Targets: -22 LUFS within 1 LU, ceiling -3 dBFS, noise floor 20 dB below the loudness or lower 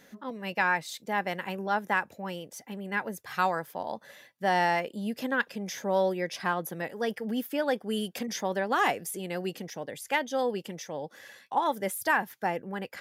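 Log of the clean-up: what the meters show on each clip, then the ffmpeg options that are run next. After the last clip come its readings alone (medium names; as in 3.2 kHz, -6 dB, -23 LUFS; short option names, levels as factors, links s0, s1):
loudness -30.5 LUFS; peak level -12.5 dBFS; loudness target -22.0 LUFS
-> -af "volume=2.66"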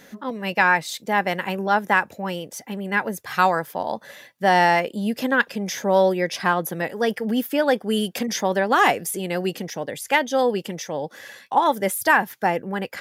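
loudness -22.0 LUFS; peak level -4.0 dBFS; noise floor -51 dBFS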